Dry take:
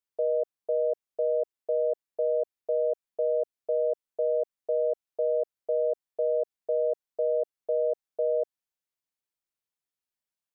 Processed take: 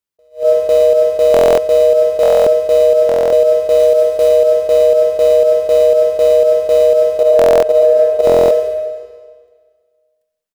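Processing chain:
0:03.79–0:04.29: variable-slope delta modulation 64 kbit/s
in parallel at −9 dB: bit reduction 5 bits
0:07.20–0:08.22: on the sum: parametric band 730 Hz +8 dB 1.6 octaves
far-end echo of a speakerphone 150 ms, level −14 dB
transient designer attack +3 dB, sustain −6 dB
low-shelf EQ 390 Hz +5 dB
output level in coarse steps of 13 dB
on a send at −4 dB: convolution reverb RT60 1.7 s, pre-delay 45 ms
on the sum: buffer that repeats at 0:01.32/0:02.21/0:03.07/0:07.37/0:08.25, samples 1,024, times 10
boost into a limiter +18 dB
level that may rise only so fast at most 260 dB per second
level −1.5 dB

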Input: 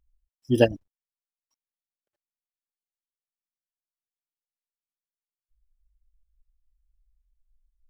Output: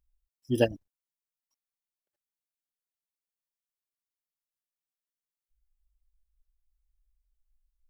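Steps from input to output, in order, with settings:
high-shelf EQ 8,100 Hz +7 dB
level −5.5 dB

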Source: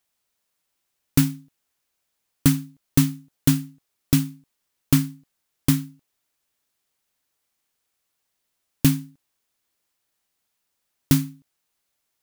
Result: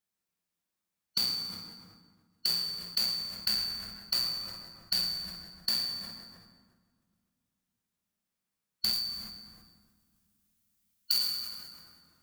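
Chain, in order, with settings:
band-splitting scrambler in four parts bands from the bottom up 4321
noise gate −43 dBFS, range −18 dB
0:08.93–0:11.14: spectral tilt +3.5 dB per octave
downward compressor 6 to 1, threshold −38 dBFS, peak gain reduction 30.5 dB
parametric band 180 Hz +11.5 dB 0.62 octaves
convolution reverb RT60 2.5 s, pre-delay 7 ms, DRR 1 dB
level that may fall only so fast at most 40 dB per second
level +5.5 dB

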